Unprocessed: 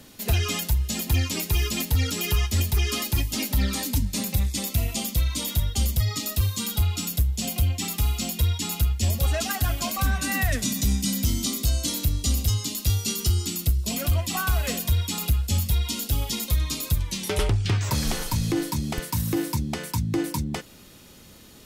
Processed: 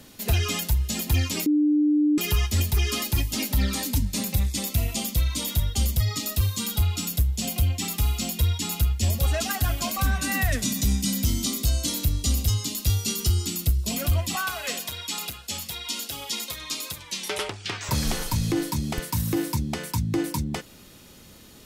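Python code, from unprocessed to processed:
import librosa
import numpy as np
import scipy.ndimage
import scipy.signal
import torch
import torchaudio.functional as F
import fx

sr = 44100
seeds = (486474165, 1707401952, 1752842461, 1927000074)

y = fx.weighting(x, sr, curve='A', at=(14.35, 17.89))
y = fx.edit(y, sr, fx.bleep(start_s=1.46, length_s=0.72, hz=298.0, db=-17.0), tone=tone)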